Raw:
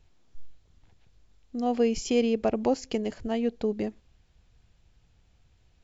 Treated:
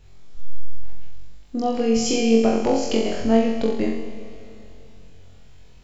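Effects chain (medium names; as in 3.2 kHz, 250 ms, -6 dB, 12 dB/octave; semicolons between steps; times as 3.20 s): compression 3:1, threshold -30 dBFS, peak gain reduction 9 dB; on a send: flutter echo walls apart 3.8 m, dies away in 0.73 s; on the sum: Schroeder reverb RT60 3.1 s, combs from 29 ms, DRR 9 dB; trim +8.5 dB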